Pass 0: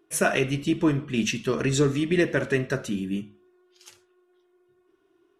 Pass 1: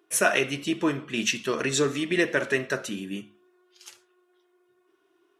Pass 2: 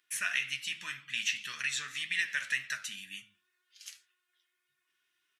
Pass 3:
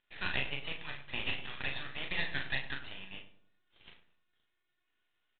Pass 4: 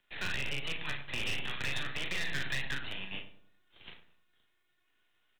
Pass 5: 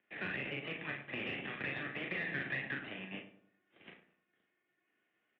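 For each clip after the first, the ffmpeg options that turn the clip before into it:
-af "highpass=f=570:p=1,volume=1.41"
-filter_complex "[0:a]firequalizer=gain_entry='entry(180,0);entry(340,-20);entry(1800,12)':delay=0.05:min_phase=1,flanger=delay=6.5:depth=5.8:regen=61:speed=1.9:shape=triangular,acrossover=split=810|3000[s0][s1][s2];[s0]acompressor=threshold=0.00251:ratio=4[s3];[s1]acompressor=threshold=0.0891:ratio=4[s4];[s2]acompressor=threshold=0.0316:ratio=4[s5];[s3][s4][s5]amix=inputs=3:normalize=0,volume=0.398"
-filter_complex "[0:a]aresample=8000,aeval=exprs='max(val(0),0)':c=same,aresample=44100,asplit=2[s0][s1];[s1]adelay=37,volume=0.531[s2];[s0][s2]amix=inputs=2:normalize=0,asplit=2[s3][s4];[s4]adelay=100,lowpass=f=1100:p=1,volume=0.282,asplit=2[s5][s6];[s6]adelay=100,lowpass=f=1100:p=1,volume=0.44,asplit=2[s7][s8];[s8]adelay=100,lowpass=f=1100:p=1,volume=0.44,asplit=2[s9][s10];[s10]adelay=100,lowpass=f=1100:p=1,volume=0.44,asplit=2[s11][s12];[s12]adelay=100,lowpass=f=1100:p=1,volume=0.44[s13];[s3][s5][s7][s9][s11][s13]amix=inputs=6:normalize=0"
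-filter_complex "[0:a]acrossover=split=170|460|970[s0][s1][s2][s3];[s2]acompressor=threshold=0.00112:ratio=6[s4];[s0][s1][s4][s3]amix=inputs=4:normalize=0,alimiter=level_in=1.68:limit=0.0631:level=0:latency=1:release=51,volume=0.596,aeval=exprs='0.0237*(abs(mod(val(0)/0.0237+3,4)-2)-1)':c=same,volume=2"
-af "highpass=190,equalizer=f=200:t=q:w=4:g=4,equalizer=f=310:t=q:w=4:g=3,equalizer=f=960:t=q:w=4:g=-9,equalizer=f=1400:t=q:w=4:g=-6,lowpass=f=2200:w=0.5412,lowpass=f=2200:w=1.3066,volume=1.26"

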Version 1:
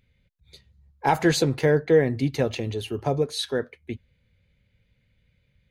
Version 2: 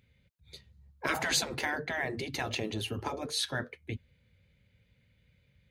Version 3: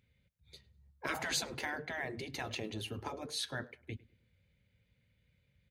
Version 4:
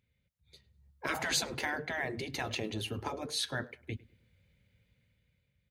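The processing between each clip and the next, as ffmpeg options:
-af "afftfilt=real='re*lt(hypot(re,im),0.224)':imag='im*lt(hypot(re,im),0.224)':win_size=1024:overlap=0.75,highpass=55"
-filter_complex "[0:a]asplit=2[s0][s1];[s1]adelay=103,lowpass=f=2700:p=1,volume=0.0841,asplit=2[s2][s3];[s3]adelay=103,lowpass=f=2700:p=1,volume=0.36,asplit=2[s4][s5];[s5]adelay=103,lowpass=f=2700:p=1,volume=0.36[s6];[s0][s2][s4][s6]amix=inputs=4:normalize=0,volume=0.501"
-af "dynaudnorm=f=250:g=7:m=2.66,volume=0.596"

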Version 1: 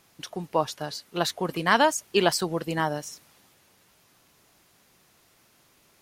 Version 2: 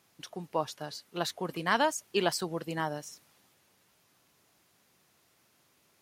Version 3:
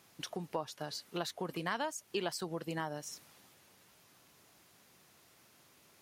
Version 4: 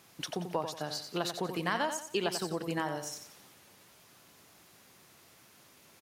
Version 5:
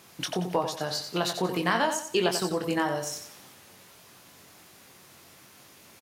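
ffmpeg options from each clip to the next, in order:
-af "highpass=71,volume=0.473"
-af "acompressor=threshold=0.00891:ratio=3,volume=1.58"
-af "aecho=1:1:90|180|270|360:0.398|0.135|0.046|0.0156,volume=1.58"
-filter_complex "[0:a]asplit=2[s0][s1];[s1]adelay=22,volume=0.473[s2];[s0][s2]amix=inputs=2:normalize=0,volume=1.88"

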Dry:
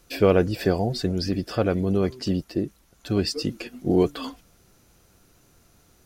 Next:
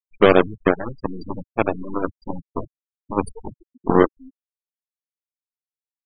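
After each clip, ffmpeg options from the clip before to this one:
-af "bandreject=f=50:t=h:w=6,bandreject=f=100:t=h:w=6,bandreject=f=150:t=h:w=6,aeval=exprs='0.531*(cos(1*acos(clip(val(0)/0.531,-1,1)))-cos(1*PI/2))+0.0596*(cos(5*acos(clip(val(0)/0.531,-1,1)))-cos(5*PI/2))+0.15*(cos(7*acos(clip(val(0)/0.531,-1,1)))-cos(7*PI/2))+0.0531*(cos(8*acos(clip(val(0)/0.531,-1,1)))-cos(8*PI/2))':c=same,afftfilt=real='re*gte(hypot(re,im),0.0631)':imag='im*gte(hypot(re,im),0.0631)':win_size=1024:overlap=0.75,volume=1.68"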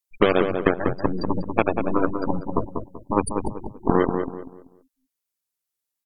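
-filter_complex "[0:a]aemphasis=mode=production:type=cd,acompressor=threshold=0.1:ratio=5,asplit=2[s0][s1];[s1]adelay=192,lowpass=f=1500:p=1,volume=0.531,asplit=2[s2][s3];[s3]adelay=192,lowpass=f=1500:p=1,volume=0.32,asplit=2[s4][s5];[s5]adelay=192,lowpass=f=1500:p=1,volume=0.32,asplit=2[s6][s7];[s7]adelay=192,lowpass=f=1500:p=1,volume=0.32[s8];[s2][s4][s6][s8]amix=inputs=4:normalize=0[s9];[s0][s9]amix=inputs=2:normalize=0,volume=1.78"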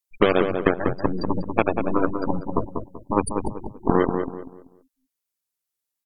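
-af anull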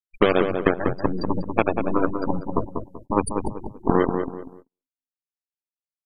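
-af "aresample=32000,aresample=44100,agate=range=0.0126:threshold=0.00794:ratio=16:detection=peak"

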